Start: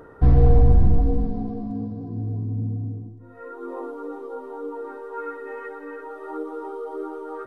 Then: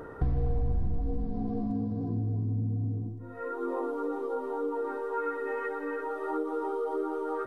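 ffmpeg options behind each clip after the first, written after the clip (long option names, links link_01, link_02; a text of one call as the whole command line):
ffmpeg -i in.wav -af "acompressor=threshold=-30dB:ratio=5,volume=2.5dB" out.wav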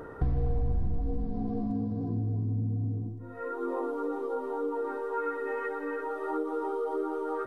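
ffmpeg -i in.wav -af anull out.wav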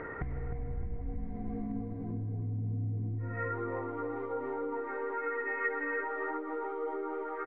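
ffmpeg -i in.wav -filter_complex "[0:a]acompressor=threshold=-35dB:ratio=6,lowpass=frequency=2100:width_type=q:width=9.8,asplit=2[link_01][link_02];[link_02]adelay=307,lowpass=frequency=840:poles=1,volume=-6.5dB,asplit=2[link_03][link_04];[link_04]adelay=307,lowpass=frequency=840:poles=1,volume=0.52,asplit=2[link_05][link_06];[link_06]adelay=307,lowpass=frequency=840:poles=1,volume=0.52,asplit=2[link_07][link_08];[link_08]adelay=307,lowpass=frequency=840:poles=1,volume=0.52,asplit=2[link_09][link_10];[link_10]adelay=307,lowpass=frequency=840:poles=1,volume=0.52,asplit=2[link_11][link_12];[link_12]adelay=307,lowpass=frequency=840:poles=1,volume=0.52[link_13];[link_01][link_03][link_05][link_07][link_09][link_11][link_13]amix=inputs=7:normalize=0" out.wav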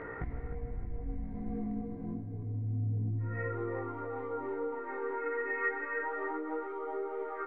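ffmpeg -i in.wav -af "flanger=delay=17.5:depth=5.9:speed=0.28,volume=2dB" out.wav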